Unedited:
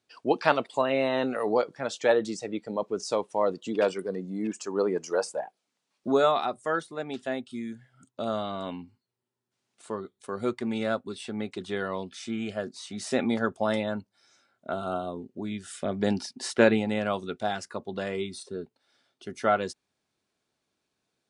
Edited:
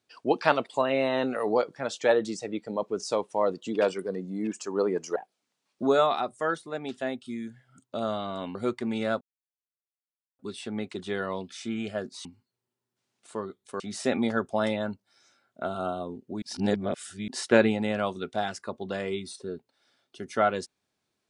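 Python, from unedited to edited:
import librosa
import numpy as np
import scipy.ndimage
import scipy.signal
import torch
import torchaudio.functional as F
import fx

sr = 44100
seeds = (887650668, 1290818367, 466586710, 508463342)

y = fx.edit(x, sr, fx.cut(start_s=5.16, length_s=0.25),
    fx.move(start_s=8.8, length_s=1.55, to_s=12.87),
    fx.insert_silence(at_s=11.01, length_s=1.18),
    fx.reverse_span(start_s=15.49, length_s=0.86), tone=tone)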